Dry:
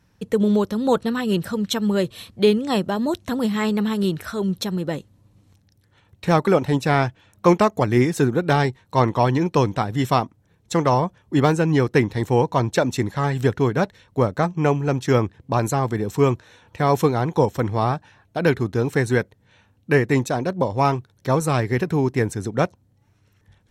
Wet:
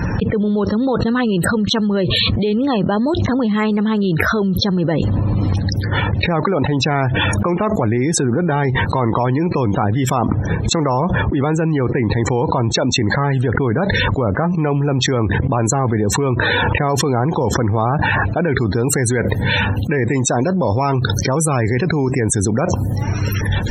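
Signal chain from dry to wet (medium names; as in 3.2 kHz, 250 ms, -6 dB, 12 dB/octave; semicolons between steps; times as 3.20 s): treble shelf 5.2 kHz -5 dB, from 18.54 s +7.5 dB; loudest bins only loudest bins 64; loudness maximiser +13.5 dB; level flattener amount 100%; trim -11.5 dB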